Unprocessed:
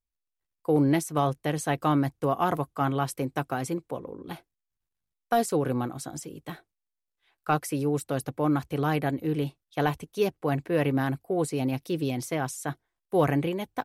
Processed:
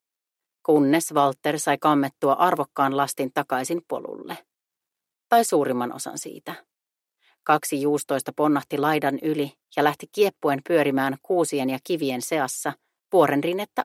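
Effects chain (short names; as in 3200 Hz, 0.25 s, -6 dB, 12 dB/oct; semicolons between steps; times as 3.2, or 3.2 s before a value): HPF 300 Hz 12 dB/oct; gain +7 dB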